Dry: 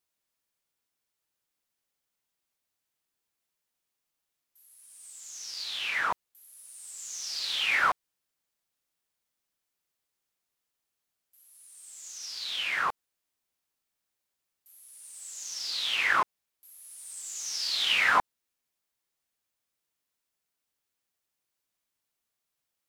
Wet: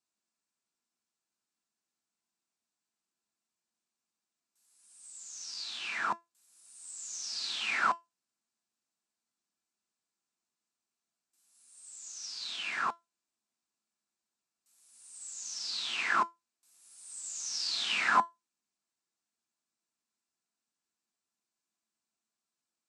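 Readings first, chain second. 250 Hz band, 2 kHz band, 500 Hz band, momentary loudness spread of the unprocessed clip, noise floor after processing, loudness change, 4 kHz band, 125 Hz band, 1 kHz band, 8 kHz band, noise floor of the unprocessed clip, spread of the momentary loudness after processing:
+1.0 dB, -5.5 dB, -4.5 dB, 20 LU, under -85 dBFS, -4.5 dB, -5.5 dB, no reading, -2.0 dB, -2.0 dB, -84 dBFS, 18 LU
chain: cabinet simulation 150–8000 Hz, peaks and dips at 220 Hz +10 dB, 530 Hz -7 dB, 2 kHz -6 dB, 3.2 kHz -6 dB, 8 kHz +5 dB; feedback comb 340 Hz, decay 0.19 s, harmonics all, mix 60%; trim +4 dB

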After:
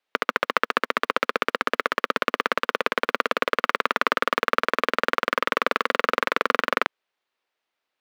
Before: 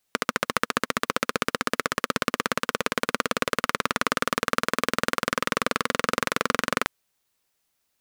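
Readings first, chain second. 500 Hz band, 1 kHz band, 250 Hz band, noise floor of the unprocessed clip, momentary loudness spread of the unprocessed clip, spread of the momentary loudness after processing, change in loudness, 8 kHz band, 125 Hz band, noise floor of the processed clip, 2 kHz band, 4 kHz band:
+2.5 dB, +3.5 dB, -3.5 dB, -75 dBFS, 2 LU, 2 LU, +2.5 dB, -11.5 dB, -10.5 dB, -83 dBFS, +3.0 dB, -0.5 dB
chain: three-band isolator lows -20 dB, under 280 Hz, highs -22 dB, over 4 kHz; in parallel at -6 dB: bit crusher 6-bit

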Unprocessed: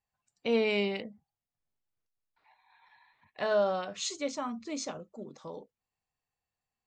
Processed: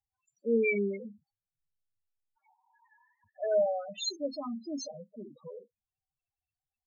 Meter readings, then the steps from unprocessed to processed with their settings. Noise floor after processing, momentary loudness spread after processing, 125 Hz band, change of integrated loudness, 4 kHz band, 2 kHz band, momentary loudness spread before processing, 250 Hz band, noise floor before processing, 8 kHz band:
under -85 dBFS, 20 LU, no reading, 0.0 dB, -2.0 dB, -1.0 dB, 18 LU, 0.0 dB, under -85 dBFS, -4.0 dB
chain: loudest bins only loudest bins 4; resonant high shelf 2 kHz +7.5 dB, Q 1.5; trim +1.5 dB

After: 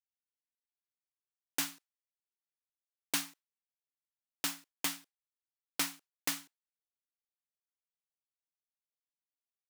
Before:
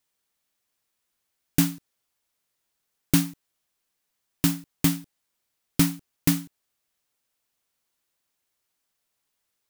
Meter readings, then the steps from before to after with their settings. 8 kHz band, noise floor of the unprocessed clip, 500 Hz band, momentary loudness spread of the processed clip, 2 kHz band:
-6.5 dB, -79 dBFS, -11.0 dB, 7 LU, -4.0 dB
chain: expander -35 dBFS; high-pass 780 Hz 12 dB/octave; treble shelf 10 kHz -8 dB; trim -3.5 dB

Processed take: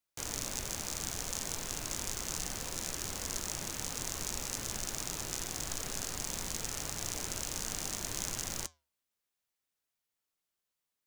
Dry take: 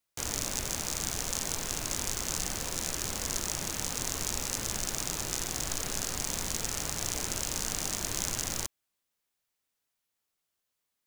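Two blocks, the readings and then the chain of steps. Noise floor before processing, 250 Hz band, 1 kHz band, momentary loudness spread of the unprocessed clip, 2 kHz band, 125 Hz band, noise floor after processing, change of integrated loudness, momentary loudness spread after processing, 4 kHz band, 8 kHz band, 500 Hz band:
-84 dBFS, -4.5 dB, -4.5 dB, 1 LU, -4.5 dB, -4.5 dB, under -85 dBFS, -4.5 dB, 1 LU, -4.5 dB, -4.5 dB, -4.5 dB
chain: flange 0.47 Hz, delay 4.9 ms, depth 6.7 ms, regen -86%

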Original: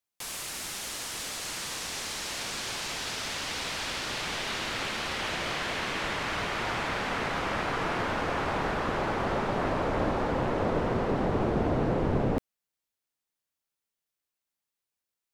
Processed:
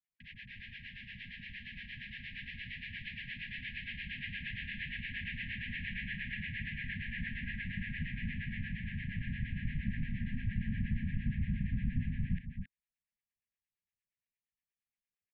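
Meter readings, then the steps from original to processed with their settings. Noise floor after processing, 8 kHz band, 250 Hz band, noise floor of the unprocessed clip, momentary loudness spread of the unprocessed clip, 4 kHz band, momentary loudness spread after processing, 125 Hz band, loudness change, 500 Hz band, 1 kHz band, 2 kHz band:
under -85 dBFS, under -40 dB, -8.5 dB, under -85 dBFS, 6 LU, -14.0 dB, 10 LU, -2.5 dB, -9.5 dB, under -40 dB, under -40 dB, -6.5 dB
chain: high-pass 110 Hz 24 dB/octave; harmonic tremolo 8.6 Hz, depth 100%, crossover 840 Hz; distance through air 99 m; delay 272 ms -7.5 dB; mistuned SSB -270 Hz 170–3100 Hz; brick-wall FIR band-stop 250–1600 Hz; trim +1 dB

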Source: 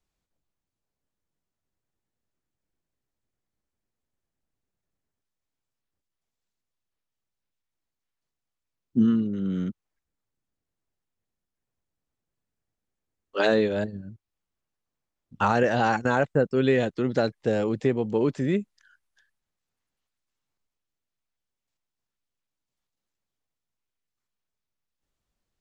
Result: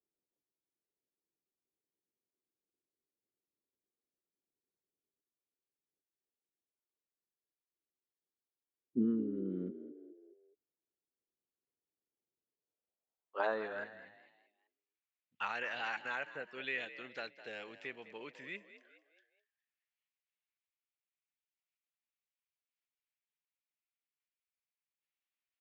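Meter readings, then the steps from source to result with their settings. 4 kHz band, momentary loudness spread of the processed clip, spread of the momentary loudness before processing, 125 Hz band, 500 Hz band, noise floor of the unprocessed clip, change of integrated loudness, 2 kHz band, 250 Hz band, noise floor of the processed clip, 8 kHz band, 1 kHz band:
-11.0 dB, 14 LU, 8 LU, -22.5 dB, -18.5 dB, under -85 dBFS, -15.0 dB, -9.0 dB, -14.5 dB, under -85 dBFS, no reading, -15.0 dB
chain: frequency-shifting echo 208 ms, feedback 41%, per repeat +53 Hz, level -14.5 dB; band-pass sweep 380 Hz -> 2.4 kHz, 12.48–14.34 s; trim -3 dB

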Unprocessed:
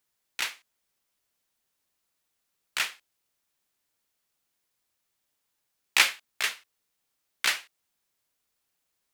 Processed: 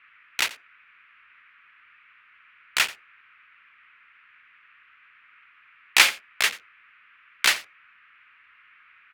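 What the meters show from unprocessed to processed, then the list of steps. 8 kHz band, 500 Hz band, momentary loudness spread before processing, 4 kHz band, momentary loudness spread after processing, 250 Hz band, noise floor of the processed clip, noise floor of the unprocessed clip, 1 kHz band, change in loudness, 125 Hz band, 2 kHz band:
+5.5 dB, +6.0 dB, 13 LU, +5.5 dB, 11 LU, +6.0 dB, -57 dBFS, -80 dBFS, +5.5 dB, +5.0 dB, no reading, +5.5 dB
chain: local Wiener filter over 41 samples; peaking EQ 84 Hz +6.5 dB 0.26 oct; in parallel at +1 dB: peak limiter -17.5 dBFS, peak gain reduction 11.5 dB; on the sum: band noise 1.2–2.6 kHz -58 dBFS; delay 87 ms -18.5 dB; trim +2 dB

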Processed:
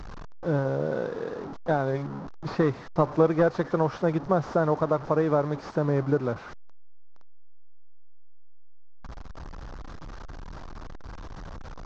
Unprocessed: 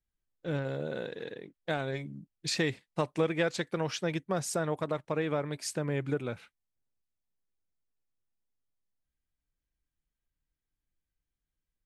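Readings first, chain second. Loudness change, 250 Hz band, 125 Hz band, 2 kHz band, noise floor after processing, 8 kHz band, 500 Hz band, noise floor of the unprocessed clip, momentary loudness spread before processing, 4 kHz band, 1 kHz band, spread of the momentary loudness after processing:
+7.0 dB, +7.5 dB, +7.5 dB, +1.0 dB, -40 dBFS, under -10 dB, +8.0 dB, under -85 dBFS, 10 LU, no reading, +9.5 dB, 20 LU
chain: one-bit delta coder 32 kbps, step -38.5 dBFS; resonant high shelf 1.7 kHz -13 dB, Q 1.5; trim +7 dB

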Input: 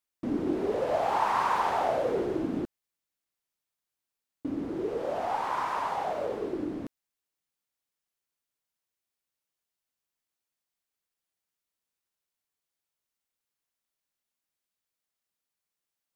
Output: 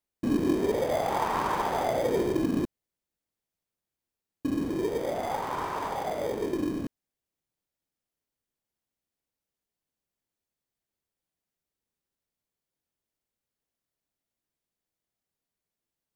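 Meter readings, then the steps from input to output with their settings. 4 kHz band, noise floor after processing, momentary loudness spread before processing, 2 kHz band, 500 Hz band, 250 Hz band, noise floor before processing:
+3.0 dB, under -85 dBFS, 10 LU, 0.0 dB, +1.5 dB, +4.0 dB, under -85 dBFS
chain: bass shelf 490 Hz +7 dB; in parallel at -8 dB: sample-and-hold 32×; on the sum: trim -3.5 dB

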